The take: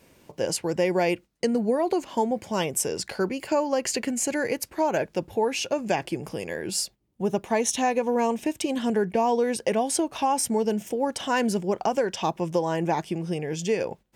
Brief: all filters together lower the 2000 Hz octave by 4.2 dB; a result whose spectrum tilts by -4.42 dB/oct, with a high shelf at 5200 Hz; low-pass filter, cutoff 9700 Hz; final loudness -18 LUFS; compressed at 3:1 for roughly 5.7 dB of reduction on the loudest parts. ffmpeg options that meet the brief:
-af "lowpass=9.7k,equalizer=f=2k:t=o:g=-5,highshelf=f=5.2k:g=-4,acompressor=threshold=-27dB:ratio=3,volume=13.5dB"

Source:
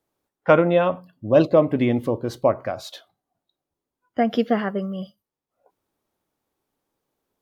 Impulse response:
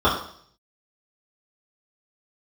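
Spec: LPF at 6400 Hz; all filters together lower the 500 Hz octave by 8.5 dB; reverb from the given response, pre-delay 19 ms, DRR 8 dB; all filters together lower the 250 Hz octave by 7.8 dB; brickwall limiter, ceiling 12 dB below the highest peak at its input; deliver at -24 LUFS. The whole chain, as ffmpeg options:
-filter_complex "[0:a]lowpass=6.4k,equalizer=f=250:t=o:g=-7.5,equalizer=f=500:t=o:g=-9,alimiter=limit=-17dB:level=0:latency=1,asplit=2[a][b];[1:a]atrim=start_sample=2205,adelay=19[c];[b][c]afir=irnorm=-1:irlink=0,volume=-29dB[d];[a][d]amix=inputs=2:normalize=0,volume=5.5dB"

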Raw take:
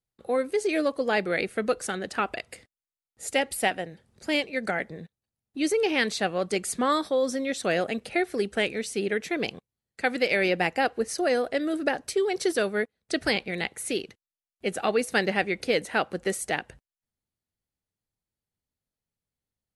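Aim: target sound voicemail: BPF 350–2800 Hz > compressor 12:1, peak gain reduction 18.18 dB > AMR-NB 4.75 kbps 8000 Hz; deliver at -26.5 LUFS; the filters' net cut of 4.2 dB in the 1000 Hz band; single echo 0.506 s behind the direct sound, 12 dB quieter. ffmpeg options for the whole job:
-af "highpass=350,lowpass=2.8k,equalizer=f=1k:t=o:g=-6,aecho=1:1:506:0.251,acompressor=threshold=-39dB:ratio=12,volume=19dB" -ar 8000 -c:a libopencore_amrnb -b:a 4750

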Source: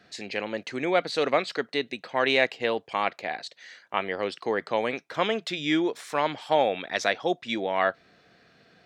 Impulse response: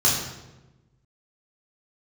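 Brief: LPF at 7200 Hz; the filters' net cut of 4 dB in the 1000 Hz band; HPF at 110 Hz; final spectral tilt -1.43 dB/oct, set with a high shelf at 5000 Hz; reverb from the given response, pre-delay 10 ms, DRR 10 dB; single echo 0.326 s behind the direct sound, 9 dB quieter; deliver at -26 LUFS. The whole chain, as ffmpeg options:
-filter_complex "[0:a]highpass=110,lowpass=7.2k,equalizer=f=1k:t=o:g=-6,highshelf=f=5k:g=8.5,aecho=1:1:326:0.355,asplit=2[a][b];[1:a]atrim=start_sample=2205,adelay=10[c];[b][c]afir=irnorm=-1:irlink=0,volume=-25.5dB[d];[a][d]amix=inputs=2:normalize=0,volume=1.5dB"

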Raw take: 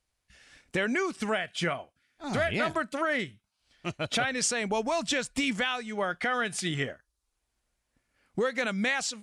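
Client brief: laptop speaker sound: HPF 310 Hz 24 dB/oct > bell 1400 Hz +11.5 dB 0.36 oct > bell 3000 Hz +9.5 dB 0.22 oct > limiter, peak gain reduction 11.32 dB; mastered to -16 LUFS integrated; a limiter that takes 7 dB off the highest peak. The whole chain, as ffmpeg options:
-af "alimiter=limit=-23.5dB:level=0:latency=1,highpass=f=310:w=0.5412,highpass=f=310:w=1.3066,equalizer=f=1.4k:t=o:w=0.36:g=11.5,equalizer=f=3k:t=o:w=0.22:g=9.5,volume=20.5dB,alimiter=limit=-6.5dB:level=0:latency=1"

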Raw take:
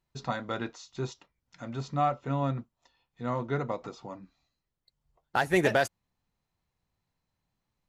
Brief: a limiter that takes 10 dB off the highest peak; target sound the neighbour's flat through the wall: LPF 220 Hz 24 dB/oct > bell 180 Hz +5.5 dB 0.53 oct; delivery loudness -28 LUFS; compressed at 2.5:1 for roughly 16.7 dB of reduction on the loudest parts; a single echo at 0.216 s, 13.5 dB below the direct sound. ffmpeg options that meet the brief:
-af "acompressor=threshold=-46dB:ratio=2.5,alimiter=level_in=10dB:limit=-24dB:level=0:latency=1,volume=-10dB,lowpass=f=220:w=0.5412,lowpass=f=220:w=1.3066,equalizer=f=180:t=o:w=0.53:g=5.5,aecho=1:1:216:0.211,volume=22.5dB"

